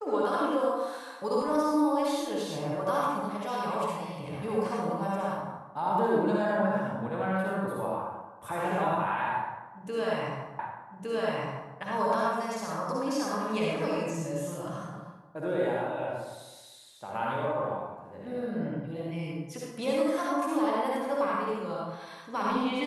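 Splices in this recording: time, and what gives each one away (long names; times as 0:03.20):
0:10.59: the same again, the last 1.16 s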